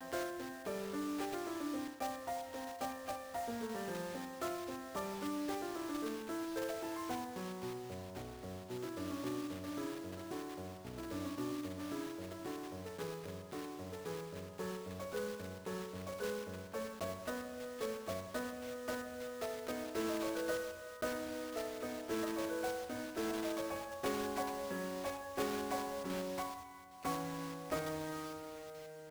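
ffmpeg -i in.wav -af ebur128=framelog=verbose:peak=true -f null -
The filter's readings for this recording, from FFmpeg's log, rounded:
Integrated loudness:
  I:         -41.9 LUFS
  Threshold: -51.9 LUFS
Loudness range:
  LRA:         4.3 LU
  Threshold: -61.9 LUFS
  LRA low:   -44.1 LUFS
  LRA high:  -39.8 LUFS
True peak:
  Peak:      -24.3 dBFS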